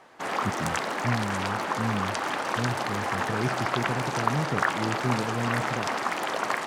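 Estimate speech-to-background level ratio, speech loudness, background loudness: -4.5 dB, -33.0 LUFS, -28.5 LUFS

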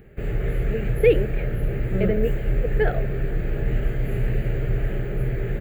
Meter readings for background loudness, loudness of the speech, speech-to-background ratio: -27.0 LUFS, -25.0 LUFS, 2.0 dB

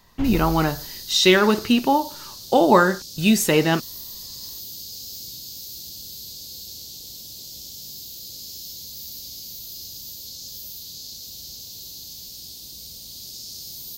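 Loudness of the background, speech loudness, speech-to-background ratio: -35.0 LUFS, -19.0 LUFS, 16.0 dB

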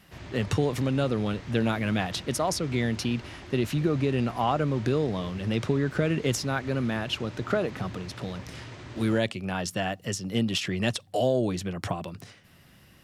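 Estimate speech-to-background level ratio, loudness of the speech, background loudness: 15.0 dB, -28.5 LUFS, -43.5 LUFS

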